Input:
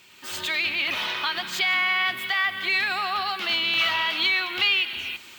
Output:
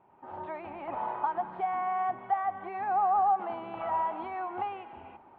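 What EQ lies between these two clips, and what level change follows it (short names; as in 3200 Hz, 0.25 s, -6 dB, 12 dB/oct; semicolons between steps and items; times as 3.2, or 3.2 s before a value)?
ladder low-pass 900 Hz, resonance 70%; +7.5 dB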